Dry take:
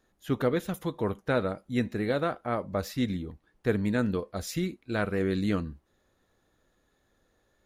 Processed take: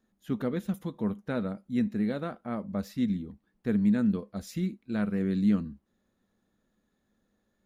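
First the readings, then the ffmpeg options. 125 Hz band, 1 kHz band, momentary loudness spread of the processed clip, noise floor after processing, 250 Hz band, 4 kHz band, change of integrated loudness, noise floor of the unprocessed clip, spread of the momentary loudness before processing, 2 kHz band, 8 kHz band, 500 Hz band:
-1.0 dB, -8.0 dB, 10 LU, -76 dBFS, +3.0 dB, -8.0 dB, 0.0 dB, -72 dBFS, 6 LU, -8.0 dB, n/a, -7.0 dB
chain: -af "equalizer=f=210:t=o:w=0.58:g=15,volume=-8dB"

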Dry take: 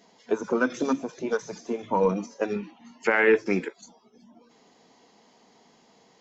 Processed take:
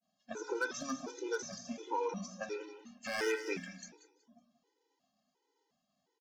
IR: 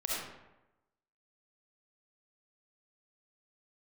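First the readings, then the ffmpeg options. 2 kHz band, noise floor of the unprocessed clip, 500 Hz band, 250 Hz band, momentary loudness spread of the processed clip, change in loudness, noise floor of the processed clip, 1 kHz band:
-12.0 dB, -60 dBFS, -13.5 dB, -15.0 dB, 14 LU, -12.5 dB, -83 dBFS, -10.0 dB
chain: -filter_complex "[0:a]bandreject=f=2.2k:w=7.6,adynamicequalizer=threshold=0.00251:dfrequency=5500:dqfactor=1.4:tfrequency=5500:tqfactor=1.4:attack=5:release=100:ratio=0.375:range=3.5:mode=boostabove:tftype=bell,agate=range=-33dB:threshold=-48dB:ratio=3:detection=peak,bandreject=f=60.83:t=h:w=4,bandreject=f=121.66:t=h:w=4,bandreject=f=182.49:t=h:w=4,bandreject=f=243.32:t=h:w=4,bandreject=f=304.15:t=h:w=4,bandreject=f=364.98:t=h:w=4,bandreject=f=425.81:t=h:w=4,bandreject=f=486.64:t=h:w=4,bandreject=f=547.47:t=h:w=4,bandreject=f=608.3:t=h:w=4,bandreject=f=669.13:t=h:w=4,bandreject=f=729.96:t=h:w=4,bandreject=f=790.79:t=h:w=4,bandreject=f=851.62:t=h:w=4,bandreject=f=912.45:t=h:w=4,bandreject=f=973.28:t=h:w=4,bandreject=f=1.03411k:t=h:w=4,bandreject=f=1.09494k:t=h:w=4,bandreject=f=1.15577k:t=h:w=4,bandreject=f=1.2166k:t=h:w=4,bandreject=f=1.27743k:t=h:w=4,bandreject=f=1.33826k:t=h:w=4,bandreject=f=1.39909k:t=h:w=4,bandreject=f=1.45992k:t=h:w=4,bandreject=f=1.52075k:t=h:w=4,bandreject=f=1.58158k:t=h:w=4,bandreject=f=1.64241k:t=h:w=4,bandreject=f=1.70324k:t=h:w=4,bandreject=f=1.76407k:t=h:w=4,bandreject=f=1.8249k:t=h:w=4,bandreject=f=1.88573k:t=h:w=4,bandreject=f=1.94656k:t=h:w=4,bandreject=f=2.00739k:t=h:w=4,bandreject=f=2.06822k:t=h:w=4,bandreject=f=2.12905k:t=h:w=4,bandreject=f=2.18988k:t=h:w=4,acrossover=split=1200[a][b];[a]acompressor=threshold=-30dB:ratio=6[c];[b]aeval=exprs='0.0596*(abs(mod(val(0)/0.0596+3,4)-2)-1)':c=same[d];[c][d]amix=inputs=2:normalize=0,aecho=1:1:185|370|555:0.251|0.0578|0.0133,afftfilt=real='re*gt(sin(2*PI*1.4*pts/sr)*(1-2*mod(floor(b*sr/1024/260),2)),0)':imag='im*gt(sin(2*PI*1.4*pts/sr)*(1-2*mod(floor(b*sr/1024/260),2)),0)':win_size=1024:overlap=0.75,volume=-3.5dB"

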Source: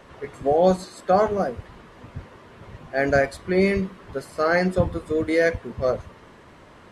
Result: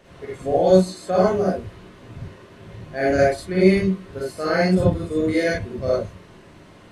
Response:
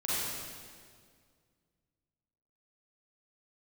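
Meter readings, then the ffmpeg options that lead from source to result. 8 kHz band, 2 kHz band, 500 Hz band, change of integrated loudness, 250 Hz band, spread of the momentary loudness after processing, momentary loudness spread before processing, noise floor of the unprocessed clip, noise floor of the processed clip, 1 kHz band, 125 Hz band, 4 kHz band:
+3.5 dB, -1.0 dB, +2.0 dB, +2.5 dB, +5.0 dB, 20 LU, 18 LU, -49 dBFS, -47 dBFS, -1.0 dB, +5.0 dB, +4.5 dB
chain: -filter_complex "[0:a]equalizer=f=1.1k:w=0.98:g=-7.5[a];[1:a]atrim=start_sample=2205,afade=t=out:st=0.14:d=0.01,atrim=end_sample=6615[b];[a][b]afir=irnorm=-1:irlink=0"

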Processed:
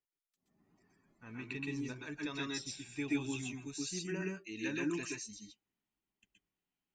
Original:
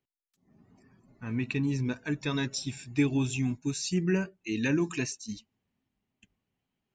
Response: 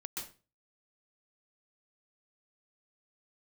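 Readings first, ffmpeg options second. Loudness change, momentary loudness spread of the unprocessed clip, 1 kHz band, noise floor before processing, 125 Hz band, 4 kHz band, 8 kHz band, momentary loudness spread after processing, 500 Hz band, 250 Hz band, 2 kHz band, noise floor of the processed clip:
-9.0 dB, 8 LU, -7.0 dB, -85 dBFS, -14.5 dB, -6.0 dB, -5.5 dB, 11 LU, -9.0 dB, -9.5 dB, -6.0 dB, under -85 dBFS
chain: -filter_complex "[0:a]equalizer=f=130:w=0.45:g=-8.5[a];[1:a]atrim=start_sample=2205,atrim=end_sample=6174[b];[a][b]afir=irnorm=-1:irlink=0,volume=-4dB"

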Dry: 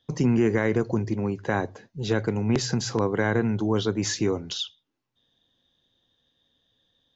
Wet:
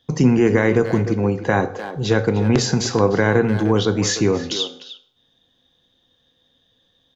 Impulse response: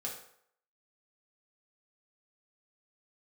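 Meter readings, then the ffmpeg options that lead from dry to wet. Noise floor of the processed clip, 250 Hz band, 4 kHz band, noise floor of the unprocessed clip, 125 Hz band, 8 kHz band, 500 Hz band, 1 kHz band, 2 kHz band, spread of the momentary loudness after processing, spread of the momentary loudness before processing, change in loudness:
-65 dBFS, +6.5 dB, +7.0 dB, -78 dBFS, +7.0 dB, n/a, +8.0 dB, +7.5 dB, +7.5 dB, 8 LU, 8 LU, +7.0 dB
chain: -filter_complex "[0:a]asplit=2[a][b];[b]adelay=300,highpass=300,lowpass=3.4k,asoftclip=type=hard:threshold=-19.5dB,volume=-10dB[c];[a][c]amix=inputs=2:normalize=0,asplit=2[d][e];[1:a]atrim=start_sample=2205[f];[e][f]afir=irnorm=-1:irlink=0,volume=-6dB[g];[d][g]amix=inputs=2:normalize=0,volume=4.5dB"

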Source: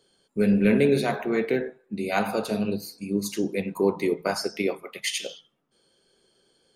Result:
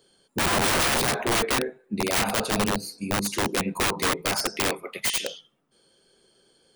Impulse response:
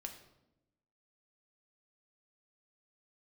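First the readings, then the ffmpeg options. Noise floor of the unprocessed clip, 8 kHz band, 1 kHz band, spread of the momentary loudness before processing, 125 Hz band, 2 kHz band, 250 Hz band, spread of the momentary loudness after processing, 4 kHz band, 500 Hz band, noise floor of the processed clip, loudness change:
-68 dBFS, +10.0 dB, +6.0 dB, 11 LU, -1.5 dB, +5.5 dB, -5.5 dB, 8 LU, +8.0 dB, -4.0 dB, -65 dBFS, +1.0 dB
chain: -af "aeval=exprs='(mod(11.2*val(0)+1,2)-1)/11.2':c=same,aexciter=amount=1.2:drive=1.3:freq=9k,volume=3dB"

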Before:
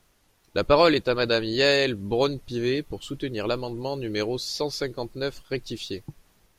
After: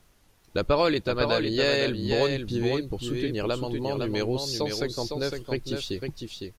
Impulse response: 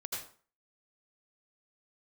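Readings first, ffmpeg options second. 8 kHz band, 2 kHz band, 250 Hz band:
0.0 dB, -3.0 dB, 0.0 dB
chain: -af "acompressor=threshold=-31dB:ratio=1.5,lowshelf=f=200:g=4.5,aecho=1:1:508:0.531,volume=1dB"

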